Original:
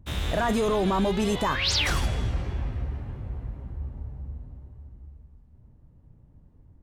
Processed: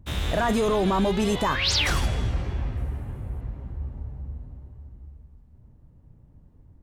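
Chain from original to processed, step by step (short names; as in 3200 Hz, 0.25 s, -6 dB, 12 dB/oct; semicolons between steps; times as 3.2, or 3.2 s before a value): 2.77–3.41 resonant high shelf 7100 Hz +11 dB, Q 1.5; gain +1.5 dB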